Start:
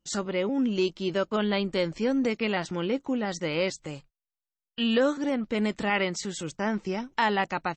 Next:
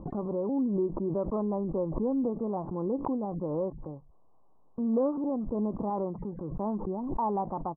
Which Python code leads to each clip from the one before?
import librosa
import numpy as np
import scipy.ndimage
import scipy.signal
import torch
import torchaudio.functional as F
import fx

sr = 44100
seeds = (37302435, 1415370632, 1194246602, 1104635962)

y = scipy.signal.sosfilt(scipy.signal.cheby1(6, 1.0, 1100.0, 'lowpass', fs=sr, output='sos'), x)
y = fx.pre_swell(y, sr, db_per_s=34.0)
y = F.gain(torch.from_numpy(y), -3.0).numpy()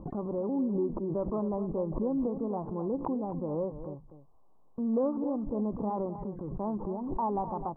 y = x + 10.0 ** (-11.5 / 20.0) * np.pad(x, (int(254 * sr / 1000.0), 0))[:len(x)]
y = F.gain(torch.from_numpy(y), -1.5).numpy()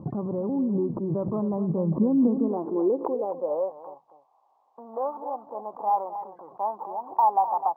y = fx.filter_sweep_highpass(x, sr, from_hz=120.0, to_hz=800.0, start_s=1.45, end_s=3.87, q=3.6)
y = np.interp(np.arange(len(y)), np.arange(len(y))[::3], y[::3])
y = F.gain(torch.from_numpy(y), 2.0).numpy()